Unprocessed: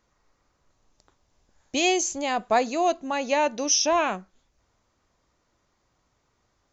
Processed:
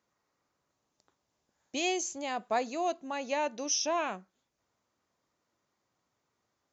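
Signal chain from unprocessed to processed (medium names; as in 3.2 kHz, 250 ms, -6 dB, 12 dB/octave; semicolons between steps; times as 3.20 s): high-pass 130 Hz 12 dB/octave; trim -8.5 dB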